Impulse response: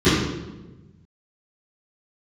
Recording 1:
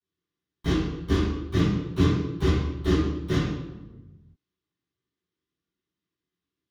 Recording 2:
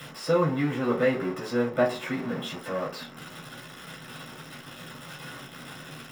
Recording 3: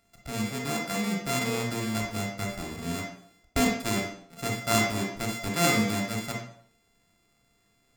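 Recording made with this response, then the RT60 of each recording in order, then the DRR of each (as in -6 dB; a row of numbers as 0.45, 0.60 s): 1; 1.1, 0.45, 0.60 s; -19.0, -4.5, 0.0 dB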